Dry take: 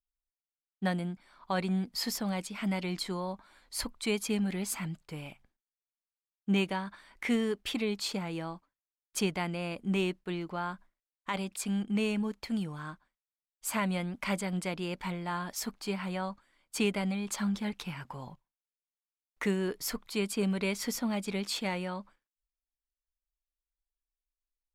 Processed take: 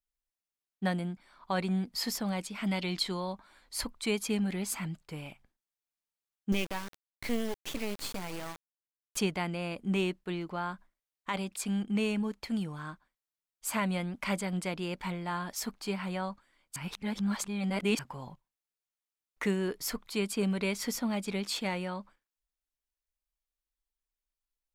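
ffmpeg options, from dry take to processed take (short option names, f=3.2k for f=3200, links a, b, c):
-filter_complex "[0:a]asettb=1/sr,asplit=3[a][b][c];[a]atrim=end=2.664[d];[b]atrim=start=2.66:end=3.34,asetpts=PTS-STARTPTS,afade=t=in:d=0.004:c=qsin,afade=t=out:st=0.676:d=0.004:c=qsin,equalizer=f=3.6k:t=o:w=0.91:g=7[e];[c]atrim=start=3.336[f];[d][e]acrossfade=d=0.004:c1=hsin:c2=qsin[g];[g][f]acrossfade=d=0.004:c1=qsin:c2=hsin,asettb=1/sr,asplit=3[h][i][j];[h]atrim=end=6.524[k];[i]atrim=start=6.52:end=9.17,asetpts=PTS-STARTPTS,afade=t=in:d=0.004:c=qsin,afade=t=out:st=2.646:d=0.004:c=qsin,acrusher=bits=4:dc=4:mix=0:aa=0.000001[l];[j]atrim=start=9.166[m];[k][l]acrossfade=d=0.004:c1=hsin:c2=qsin[n];[n][m]acrossfade=d=0.004:c1=qsin:c2=hsin,asplit=3[o][p][q];[o]atrim=end=16.762[r];[p]atrim=start=16.758:end=17.992,asetpts=PTS-STARTPTS,areverse[s];[q]atrim=start=17.988[t];[r][s]acrossfade=d=0.004:c1=hsin:c2=hsin[u];[u][t]acrossfade=d=0.004:c1=hsin:c2=hsin"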